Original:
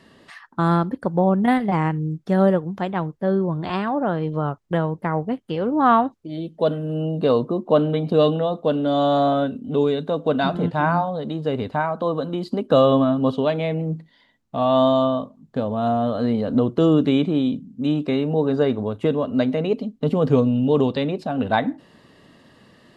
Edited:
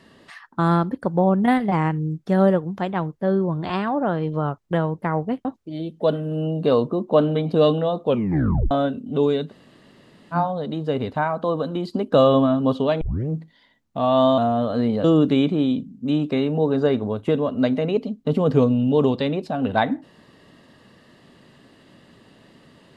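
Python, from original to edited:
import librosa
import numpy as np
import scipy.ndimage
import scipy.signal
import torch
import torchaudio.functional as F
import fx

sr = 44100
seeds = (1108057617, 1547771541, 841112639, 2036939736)

y = fx.edit(x, sr, fx.cut(start_s=5.45, length_s=0.58),
    fx.tape_stop(start_s=8.64, length_s=0.65),
    fx.room_tone_fill(start_s=10.07, length_s=0.85, crossfade_s=0.06),
    fx.tape_start(start_s=13.59, length_s=0.28),
    fx.cut(start_s=14.96, length_s=0.87),
    fx.cut(start_s=16.49, length_s=0.31), tone=tone)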